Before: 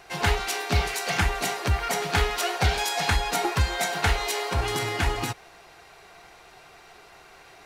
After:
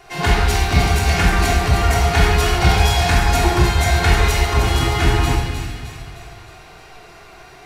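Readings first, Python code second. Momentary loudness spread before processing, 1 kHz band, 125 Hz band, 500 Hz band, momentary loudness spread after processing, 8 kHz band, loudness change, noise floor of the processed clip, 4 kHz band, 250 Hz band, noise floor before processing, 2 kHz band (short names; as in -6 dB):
3 LU, +8.0 dB, +12.5 dB, +8.0 dB, 10 LU, +6.0 dB, +9.0 dB, -42 dBFS, +6.5 dB, +12.0 dB, -51 dBFS, +7.0 dB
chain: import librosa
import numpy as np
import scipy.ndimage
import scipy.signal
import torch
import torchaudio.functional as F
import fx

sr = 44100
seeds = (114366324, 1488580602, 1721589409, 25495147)

y = fx.low_shelf(x, sr, hz=360.0, db=4.0)
y = fx.echo_wet_highpass(y, sr, ms=308, feedback_pct=50, hz=1900.0, wet_db=-7.0)
y = fx.room_shoebox(y, sr, seeds[0], volume_m3=1200.0, walls='mixed', distance_m=3.3)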